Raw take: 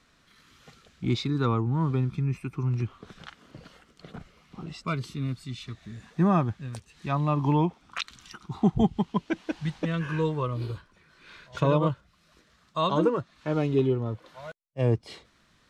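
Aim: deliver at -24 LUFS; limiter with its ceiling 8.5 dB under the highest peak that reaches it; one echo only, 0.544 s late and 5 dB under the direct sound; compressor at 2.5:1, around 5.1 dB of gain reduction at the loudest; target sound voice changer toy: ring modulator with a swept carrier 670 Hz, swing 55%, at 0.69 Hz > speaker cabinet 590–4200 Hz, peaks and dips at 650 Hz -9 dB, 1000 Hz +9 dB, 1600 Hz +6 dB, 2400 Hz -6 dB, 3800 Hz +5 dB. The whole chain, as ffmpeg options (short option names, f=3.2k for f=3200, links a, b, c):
-af "acompressor=threshold=-25dB:ratio=2.5,alimiter=limit=-22.5dB:level=0:latency=1,aecho=1:1:544:0.562,aeval=exprs='val(0)*sin(2*PI*670*n/s+670*0.55/0.69*sin(2*PI*0.69*n/s))':c=same,highpass=590,equalizer=f=650:t=q:w=4:g=-9,equalizer=f=1k:t=q:w=4:g=9,equalizer=f=1.6k:t=q:w=4:g=6,equalizer=f=2.4k:t=q:w=4:g=-6,equalizer=f=3.8k:t=q:w=4:g=5,lowpass=f=4.2k:w=0.5412,lowpass=f=4.2k:w=1.3066,volume=10.5dB"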